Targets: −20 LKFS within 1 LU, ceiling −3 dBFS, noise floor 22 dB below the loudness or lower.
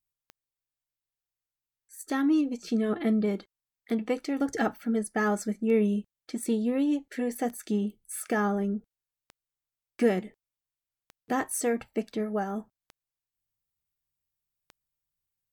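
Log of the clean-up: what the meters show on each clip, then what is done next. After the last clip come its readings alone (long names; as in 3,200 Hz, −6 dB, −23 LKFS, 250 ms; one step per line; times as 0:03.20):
number of clicks 9; integrated loudness −29.0 LKFS; sample peak −12.5 dBFS; target loudness −20.0 LKFS
→ click removal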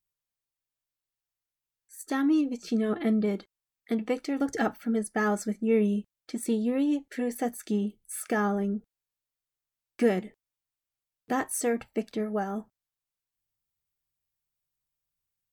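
number of clicks 0; integrated loudness −29.0 LKFS; sample peak −12.5 dBFS; target loudness −20.0 LKFS
→ level +9 dB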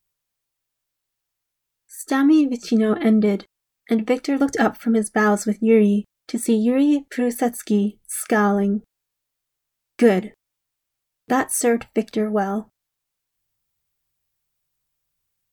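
integrated loudness −20.0 LKFS; sample peak −3.5 dBFS; background noise floor −81 dBFS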